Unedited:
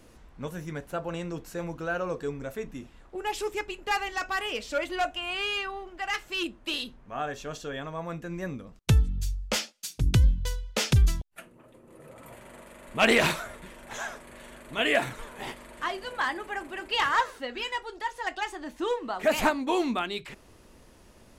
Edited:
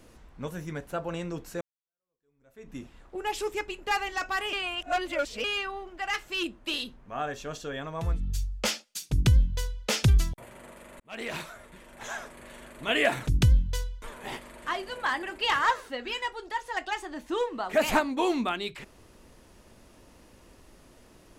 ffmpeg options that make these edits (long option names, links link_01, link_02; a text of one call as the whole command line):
ffmpeg -i in.wav -filter_complex "[0:a]asplit=10[link_01][link_02][link_03][link_04][link_05][link_06][link_07][link_08][link_09][link_10];[link_01]atrim=end=1.61,asetpts=PTS-STARTPTS,afade=type=out:start_time=1.606:duration=0.004:curve=hsin[link_11];[link_02]atrim=start=1.61:end=4.532,asetpts=PTS-STARTPTS,afade=type=in:duration=1.14:curve=exp[link_12];[link_03]atrim=start=4.528:end=5.442,asetpts=PTS-STARTPTS,areverse[link_13];[link_04]atrim=start=5.438:end=8.23[link_14];[link_05]atrim=start=8.87:end=11.262[link_15];[link_06]atrim=start=12.278:end=12.9,asetpts=PTS-STARTPTS,afade=type=out:start_time=0.618:duration=0.004:curve=hsin[link_16];[link_07]atrim=start=12.9:end=15.172,asetpts=PTS-STARTPTS,afade=type=in:duration=1.33[link_17];[link_08]atrim=start=9.988:end=10.742[link_18];[link_09]atrim=start=15.168:end=16.382[link_19];[link_10]atrim=start=16.728[link_20];[link_11][link_12]concat=n=2:v=0:a=1[link_21];[link_21][link_13]acrossfade=duration=0.004:curve1=hsin:curve2=hsin[link_22];[link_22][link_14]acrossfade=duration=0.004:curve1=hsin:curve2=hsin[link_23];[link_23][link_15]acrossfade=duration=0.24:curve1=tri:curve2=tri[link_24];[link_16][link_17]concat=n=2:v=0:a=1[link_25];[link_24][link_25]acrossfade=duration=0.004:curve1=hsin:curve2=hsin[link_26];[link_26][link_18]acrossfade=duration=0.004:curve1=hsin:curve2=hsin[link_27];[link_27][link_19]acrossfade=duration=0.004:curve1=hsin:curve2=hsin[link_28];[link_28][link_20]acrossfade=duration=0.004:curve1=hsin:curve2=hsin" out.wav